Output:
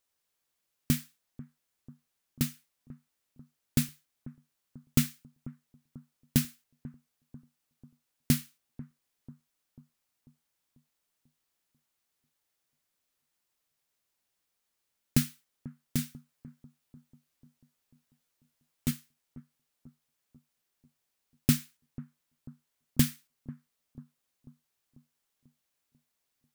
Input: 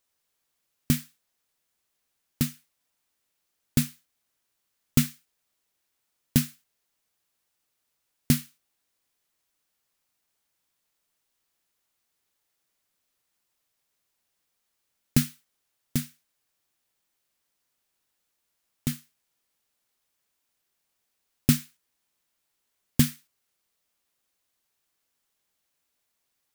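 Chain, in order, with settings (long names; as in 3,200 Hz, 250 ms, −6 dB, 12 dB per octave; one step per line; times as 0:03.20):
0:15.97–0:18.91: double-tracking delay 12 ms −4 dB
on a send: bucket-brigade delay 492 ms, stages 4,096, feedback 52%, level −17.5 dB
on the sum: level −3.5 dB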